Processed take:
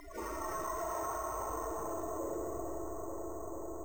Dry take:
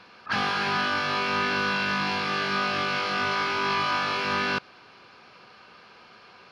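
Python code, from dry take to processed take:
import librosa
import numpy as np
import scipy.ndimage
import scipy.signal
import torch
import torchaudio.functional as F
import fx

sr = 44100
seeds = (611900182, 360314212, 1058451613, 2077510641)

y = fx.spec_gate(x, sr, threshold_db=-30, keep='weak')
y = scipy.signal.sosfilt(scipy.signal.butter(2, 2400.0, 'lowpass', fs=sr, output='sos'), y)
y = fx.low_shelf(y, sr, hz=110.0, db=7.5)
y = fx.stretch_vocoder_free(y, sr, factor=0.59)
y = fx.small_body(y, sr, hz=(370.0, 640.0, 1000.0), ring_ms=30, db=17)
y = fx.filter_sweep_lowpass(y, sr, from_hz=1300.0, to_hz=230.0, start_s=0.76, end_s=3.66, q=1.5)
y = fx.echo_filtered(y, sr, ms=441, feedback_pct=76, hz=1900.0, wet_db=-9.5)
y = fx.rev_schroeder(y, sr, rt60_s=1.6, comb_ms=27, drr_db=-1.5)
y = np.repeat(y[::6], 6)[:len(y)]
y = fx.env_flatten(y, sr, amount_pct=70)
y = F.gain(torch.from_numpy(y), 12.0).numpy()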